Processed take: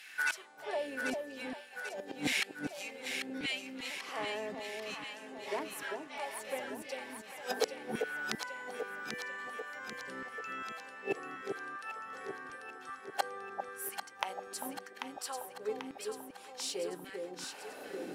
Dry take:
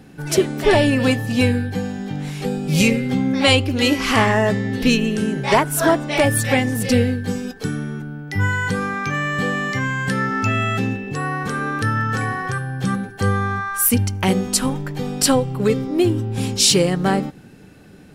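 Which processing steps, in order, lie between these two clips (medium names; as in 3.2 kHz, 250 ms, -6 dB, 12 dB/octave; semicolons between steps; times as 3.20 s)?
high-pass 100 Hz 6 dB/octave; hum notches 50/100/150/200/250/300/350/400/450 Hz; inverted gate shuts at -21 dBFS, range -26 dB; valve stage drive 17 dB, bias 0.7; LFO high-pass saw down 0.88 Hz 270–2400 Hz; on a send: echo whose repeats swap between lows and highs 395 ms, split 820 Hz, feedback 77%, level -3.5 dB; on the sum: trim +5.5 dB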